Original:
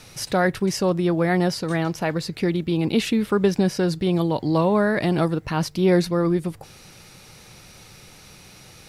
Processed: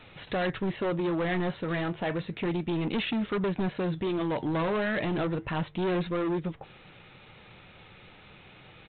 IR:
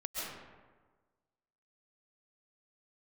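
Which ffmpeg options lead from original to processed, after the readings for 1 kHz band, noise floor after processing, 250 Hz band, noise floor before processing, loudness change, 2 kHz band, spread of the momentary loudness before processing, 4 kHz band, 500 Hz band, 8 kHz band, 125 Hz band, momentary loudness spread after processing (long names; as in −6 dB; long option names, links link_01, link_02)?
−7.0 dB, −53 dBFS, −8.5 dB, −47 dBFS, −8.5 dB, −5.5 dB, 6 LU, −7.5 dB, −8.5 dB, below −40 dB, −9.0 dB, 4 LU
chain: -af "lowshelf=frequency=230:gain=-4.5,flanger=delay=3:depth=8.8:regen=-69:speed=0.32:shape=triangular,aresample=8000,asoftclip=type=hard:threshold=-27.5dB,aresample=44100,volume=2dB"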